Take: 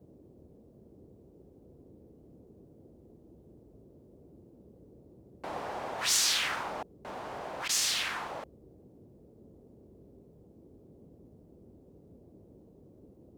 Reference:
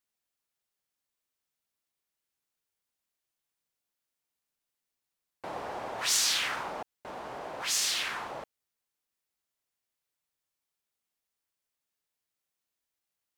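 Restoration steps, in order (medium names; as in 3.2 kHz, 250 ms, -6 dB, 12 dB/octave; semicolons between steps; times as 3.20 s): interpolate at 7.68 s, 10 ms; noise print and reduce 29 dB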